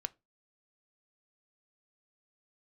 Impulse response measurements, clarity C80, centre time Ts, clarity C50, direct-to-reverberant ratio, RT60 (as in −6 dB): 34.5 dB, 1 ms, 27.0 dB, 12.0 dB, 0.25 s